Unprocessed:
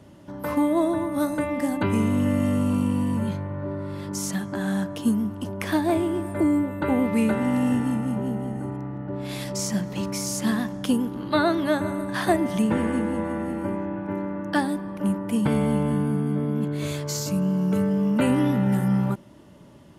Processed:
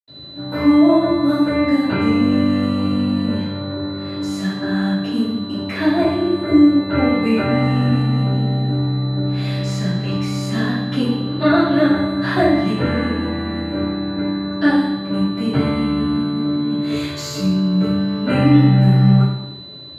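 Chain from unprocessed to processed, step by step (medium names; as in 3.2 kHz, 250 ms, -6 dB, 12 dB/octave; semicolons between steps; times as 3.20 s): 16.73–17.34 s: treble shelf 3.9 kHz +7 dB; whistle 4 kHz -38 dBFS; reverberation RT60 0.90 s, pre-delay 76 ms, DRR -60 dB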